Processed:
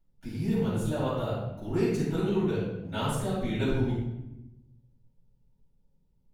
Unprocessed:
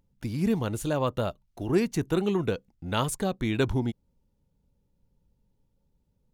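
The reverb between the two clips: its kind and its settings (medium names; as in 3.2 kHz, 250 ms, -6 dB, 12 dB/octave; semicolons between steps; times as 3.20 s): simulated room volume 360 m³, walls mixed, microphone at 7.4 m; trim -18.5 dB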